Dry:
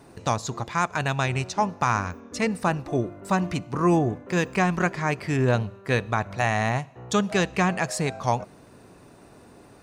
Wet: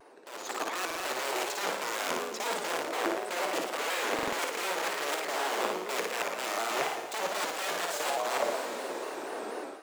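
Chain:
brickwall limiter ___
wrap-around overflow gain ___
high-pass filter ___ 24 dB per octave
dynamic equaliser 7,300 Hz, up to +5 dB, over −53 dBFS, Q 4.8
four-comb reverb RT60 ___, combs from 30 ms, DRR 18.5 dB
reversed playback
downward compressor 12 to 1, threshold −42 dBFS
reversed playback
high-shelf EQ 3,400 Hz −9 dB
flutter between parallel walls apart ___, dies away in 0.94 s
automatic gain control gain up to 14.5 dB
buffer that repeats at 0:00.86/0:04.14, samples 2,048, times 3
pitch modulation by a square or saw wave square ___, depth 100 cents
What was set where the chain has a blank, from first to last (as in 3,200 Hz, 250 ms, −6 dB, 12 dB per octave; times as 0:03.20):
−16.5 dBFS, 24 dB, 370 Hz, 3.8 s, 9.6 metres, 4.1 Hz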